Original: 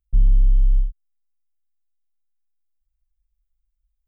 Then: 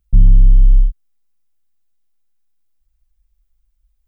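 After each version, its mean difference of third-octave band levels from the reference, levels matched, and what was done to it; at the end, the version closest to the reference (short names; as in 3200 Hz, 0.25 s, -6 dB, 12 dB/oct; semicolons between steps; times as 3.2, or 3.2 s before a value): 2.5 dB: bell 170 Hz +9 dB 1.5 oct; in parallel at +2 dB: limiter -17 dBFS, peak gain reduction 9.5 dB; on the sum: gain +3 dB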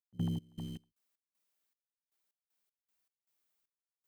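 7.5 dB: HPF 160 Hz 24 dB/oct; step gate ".x.x.x.xx." 78 bpm -24 dB; gain +9.5 dB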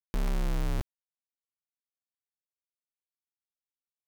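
17.5 dB: spectral noise reduction 25 dB; companded quantiser 2-bit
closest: first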